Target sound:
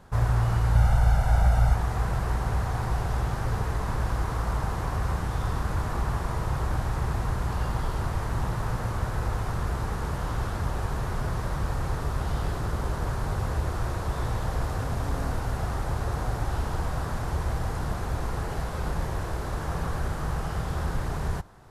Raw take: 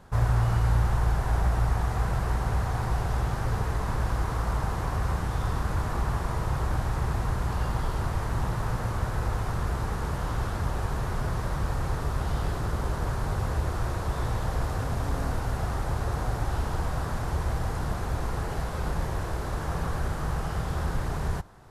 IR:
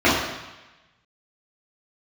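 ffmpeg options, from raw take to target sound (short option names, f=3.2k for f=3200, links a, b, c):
-filter_complex "[0:a]asettb=1/sr,asplit=3[a][b][c];[a]atrim=end=0.754[d];[b]atrim=start=0.75:end=1.75,asetpts=PTS-STARTPTS,afade=t=in:d=0.004:c=qsin,afade=t=out:st=0.996:d=0.004:c=qsin,aecho=1:1:1.4:0.69,atrim=end_sample=44100[e];[c]atrim=start=1.746[f];[d][e]acrossfade=d=0.004:c1=hsin:c2=qsin[g];[g][f]acrossfade=d=0.004:c1=qsin:c2=hsin"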